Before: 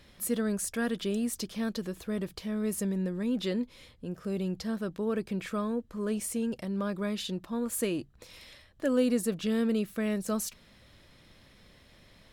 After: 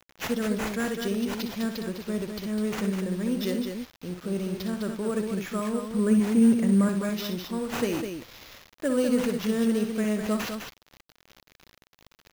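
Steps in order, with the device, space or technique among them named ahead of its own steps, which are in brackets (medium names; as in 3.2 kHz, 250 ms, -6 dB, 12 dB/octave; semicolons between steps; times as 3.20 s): 5.91–6.89 s: graphic EQ 125/250/2000/4000/8000 Hz +7/+9/+8/-10/-6 dB; loudspeakers at several distances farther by 21 m -8 dB, 70 m -6 dB; early 8-bit sampler (sample-rate reducer 8.9 kHz, jitter 0%; bit crusher 8-bit); trim +1.5 dB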